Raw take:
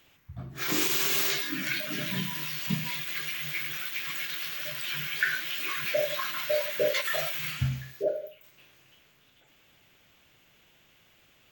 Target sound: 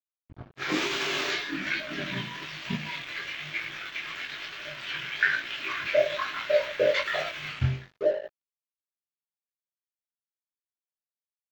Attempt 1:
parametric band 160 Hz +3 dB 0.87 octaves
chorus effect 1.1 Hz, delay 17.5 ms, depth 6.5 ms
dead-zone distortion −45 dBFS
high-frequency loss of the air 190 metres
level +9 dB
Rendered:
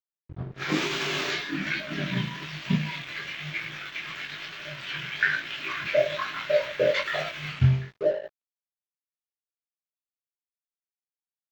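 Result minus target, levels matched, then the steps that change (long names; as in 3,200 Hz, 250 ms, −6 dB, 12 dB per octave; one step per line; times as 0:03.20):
125 Hz band +6.0 dB
change: parametric band 160 Hz −6.5 dB 0.87 octaves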